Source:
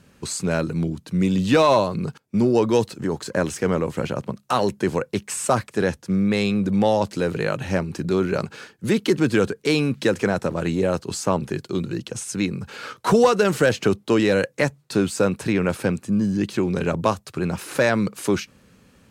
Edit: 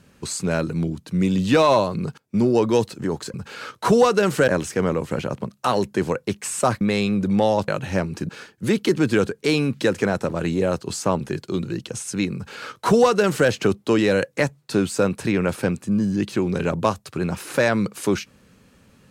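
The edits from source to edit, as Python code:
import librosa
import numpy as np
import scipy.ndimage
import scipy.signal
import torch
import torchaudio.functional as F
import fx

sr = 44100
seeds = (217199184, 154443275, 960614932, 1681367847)

y = fx.edit(x, sr, fx.cut(start_s=5.67, length_s=0.57),
    fx.cut(start_s=7.11, length_s=0.35),
    fx.cut(start_s=8.07, length_s=0.43),
    fx.duplicate(start_s=12.56, length_s=1.14, to_s=3.34), tone=tone)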